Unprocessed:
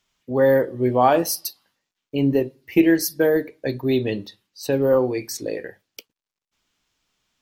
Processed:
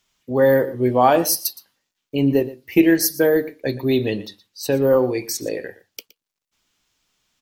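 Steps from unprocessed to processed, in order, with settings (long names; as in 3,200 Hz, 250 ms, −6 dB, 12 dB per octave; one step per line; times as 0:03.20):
high-shelf EQ 5,000 Hz +5 dB
single-tap delay 118 ms −18 dB
level +1.5 dB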